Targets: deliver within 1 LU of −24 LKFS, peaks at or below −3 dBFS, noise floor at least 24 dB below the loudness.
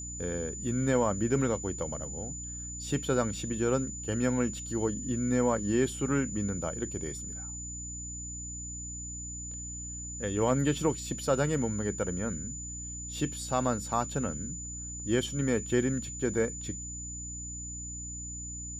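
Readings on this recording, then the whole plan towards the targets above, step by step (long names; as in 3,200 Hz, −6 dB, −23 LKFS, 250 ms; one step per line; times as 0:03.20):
mains hum 60 Hz; hum harmonics up to 300 Hz; level of the hum −41 dBFS; interfering tone 7,000 Hz; level of the tone −39 dBFS; integrated loudness −32.0 LKFS; sample peak −15.0 dBFS; target loudness −24.0 LKFS
→ mains-hum notches 60/120/180/240/300 Hz
notch filter 7,000 Hz, Q 30
level +8 dB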